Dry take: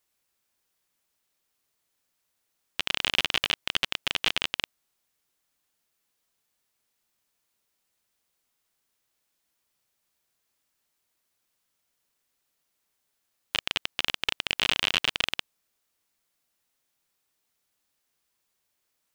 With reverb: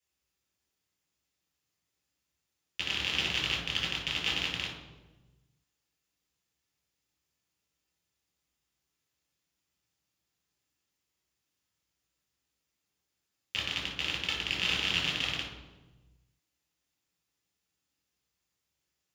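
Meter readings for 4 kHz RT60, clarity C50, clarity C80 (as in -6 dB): 0.75 s, 3.0 dB, 6.5 dB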